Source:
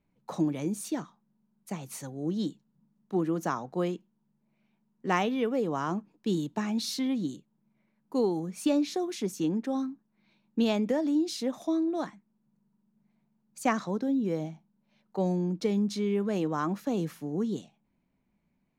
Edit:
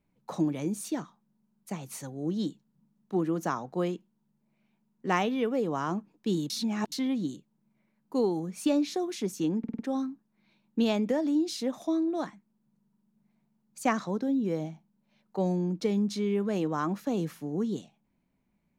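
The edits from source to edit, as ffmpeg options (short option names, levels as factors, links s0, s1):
-filter_complex "[0:a]asplit=7[s0][s1][s2][s3][s4][s5][s6];[s0]atrim=end=6.502[s7];[s1]atrim=start=6.498:end=6.922,asetpts=PTS-STARTPTS,areverse[s8];[s2]atrim=start=6.918:end=9.642[s9];[s3]atrim=start=9.588:end=9.642[s10];[s4]atrim=start=9.588:end=9.642[s11];[s5]atrim=start=9.588:end=9.642[s12];[s6]atrim=start=9.588[s13];[s7][s8]acrossfade=d=0.004:c1=hsin:c2=hsin[s14];[s14][s9]acrossfade=d=0.004:c1=hsin:c2=hsin[s15];[s15][s10]acrossfade=d=0.004:c1=hsin:c2=hsin[s16];[s16][s11]acrossfade=d=0.004:c1=hsin:c2=hsin[s17];[s17][s12]acrossfade=d=0.004:c1=hsin:c2=hsin[s18];[s18][s13]acrossfade=d=0.004:c1=hsin:c2=hsin"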